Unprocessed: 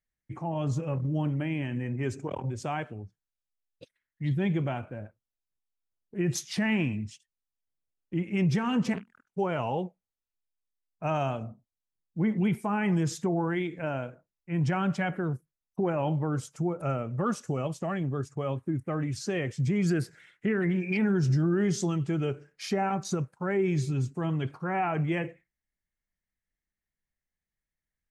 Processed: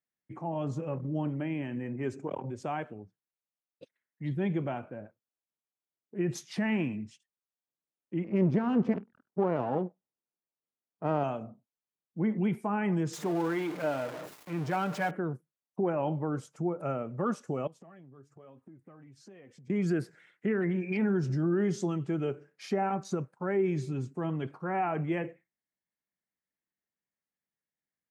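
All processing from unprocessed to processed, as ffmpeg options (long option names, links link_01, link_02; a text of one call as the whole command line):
ffmpeg -i in.wav -filter_complex "[0:a]asettb=1/sr,asplit=3[link_01][link_02][link_03];[link_01]atrim=end=8.244[link_04];[link_02]atrim=start=8.24:end=11.24,asetpts=PTS-STARTPTS,afade=type=in:duration=0.004:curve=qsin,afade=type=out:start_time=2.996:duration=0.004:curve=qsin,aeval=exprs='if(lt(val(0),0),0.251*val(0),val(0))':channel_layout=same,tiltshelf=frequency=1400:gain=6.5,adynamicsmooth=sensitivity=7:basefreq=4700[link_05];[link_03]atrim=start=11.236[link_06];[link_04][link_05]acrossfade=duration=0.004:curve1=hsin:curve2=qsin[link_07];[link_07][link_06]acrossfade=duration=0.004:curve1=qsin:curve2=hsin,asettb=1/sr,asplit=3[link_08][link_09][link_10];[link_08]atrim=end=13.134[link_11];[link_09]atrim=start=13.13:end=15.11,asetpts=PTS-STARTPTS,afade=type=in:duration=0.004:curve=qsin,afade=type=out:start_time=1.976:duration=0.004:curve=qsin,aeval=exprs='val(0)+0.5*0.0251*sgn(val(0))':channel_layout=same,equalizer=frequency=150:width=0.97:gain=-7,aecho=1:1:6.6:0.32,atrim=end_sample=87318[link_12];[link_10]atrim=start=15.106[link_13];[link_11][link_12]acrossfade=duration=0.004:curve1=hsin:curve2=qsin[link_14];[link_14][link_13]acrossfade=duration=0.004:curve1=qsin:curve2=hsin,asettb=1/sr,asplit=3[link_15][link_16][link_17];[link_15]atrim=end=17.674[link_18];[link_16]atrim=start=17.67:end=19.7,asetpts=PTS-STARTPTS,afade=type=in:duration=0.004:curve=qsin,afade=type=out:start_time=2.026:duration=0.004:curve=qsin,flanger=delay=3.9:depth=3.9:regen=51:speed=1.1:shape=sinusoidal,acompressor=threshold=-46dB:ratio=10:attack=3.2:release=140:knee=1:detection=peak[link_19];[link_17]atrim=start=19.696[link_20];[link_18][link_19]acrossfade=duration=0.004:curve1=hsin:curve2=qsin[link_21];[link_21][link_20]acrossfade=duration=0.004:curve1=qsin:curve2=hsin,highpass=190,highshelf=frequency=2100:gain=-10" out.wav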